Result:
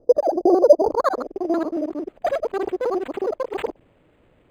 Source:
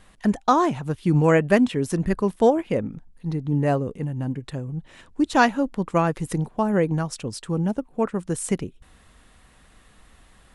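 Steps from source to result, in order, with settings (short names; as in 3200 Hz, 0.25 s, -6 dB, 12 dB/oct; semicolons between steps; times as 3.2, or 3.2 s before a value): local time reversal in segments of 0.106 s; graphic EQ 125/250/1000/2000/4000/8000 Hz +12/+10/-5/-8/-5/+9 dB; short-mantissa float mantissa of 4-bit; low-pass sweep 260 Hz -> 8800 Hz, 1.77–4.83; speed mistake 33 rpm record played at 78 rpm; decimation joined by straight lines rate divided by 8×; gain -9.5 dB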